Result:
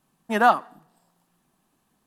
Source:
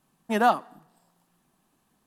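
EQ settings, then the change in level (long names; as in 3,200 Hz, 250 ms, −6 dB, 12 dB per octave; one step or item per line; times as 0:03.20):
dynamic equaliser 1,400 Hz, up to +6 dB, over −34 dBFS, Q 0.78
0.0 dB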